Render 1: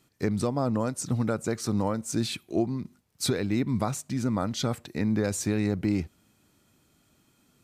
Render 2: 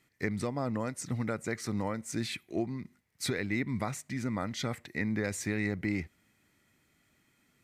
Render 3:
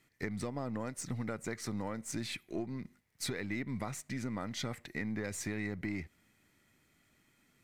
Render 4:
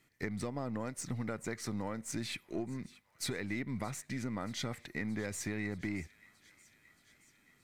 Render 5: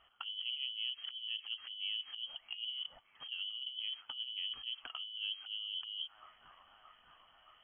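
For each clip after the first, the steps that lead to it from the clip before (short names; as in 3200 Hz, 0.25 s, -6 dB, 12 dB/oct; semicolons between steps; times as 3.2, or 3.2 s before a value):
bell 2000 Hz +15 dB 0.47 oct; gain -6.5 dB
half-wave gain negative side -3 dB; compressor 2.5:1, threshold -37 dBFS, peak gain reduction 6 dB; gain +1 dB
thin delay 0.625 s, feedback 69%, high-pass 1500 Hz, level -20 dB
treble ducked by the level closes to 310 Hz, closed at -34 dBFS; negative-ratio compressor -42 dBFS, ratio -0.5; inverted band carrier 3200 Hz; gain +1 dB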